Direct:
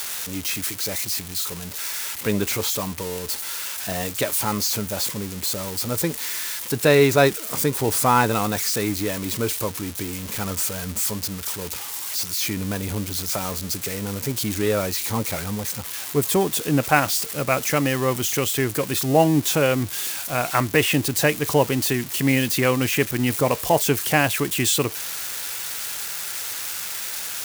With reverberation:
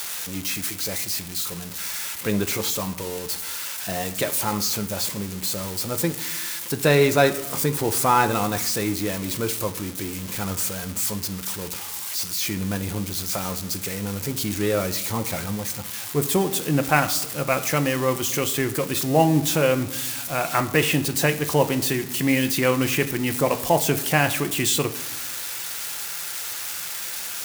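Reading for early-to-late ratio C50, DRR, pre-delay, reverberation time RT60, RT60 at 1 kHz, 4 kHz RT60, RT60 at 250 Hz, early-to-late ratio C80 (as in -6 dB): 14.5 dB, 8.0 dB, 6 ms, 1.0 s, 0.95 s, 0.55 s, 1.5 s, 16.5 dB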